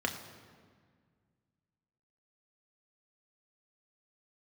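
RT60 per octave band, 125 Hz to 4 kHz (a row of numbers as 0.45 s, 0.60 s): 2.7 s, 2.4 s, 1.9 s, 1.7 s, 1.6 s, 1.2 s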